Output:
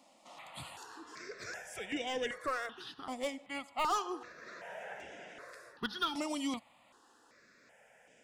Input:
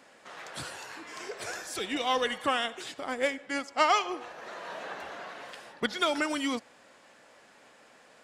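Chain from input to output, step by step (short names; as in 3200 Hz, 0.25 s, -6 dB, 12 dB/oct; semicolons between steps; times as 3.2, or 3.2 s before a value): 0.83–3.04 high shelf 11000 Hz -10.5 dB; hard clip -21.5 dBFS, distortion -13 dB; step phaser 2.6 Hz 430–4200 Hz; gain -3.5 dB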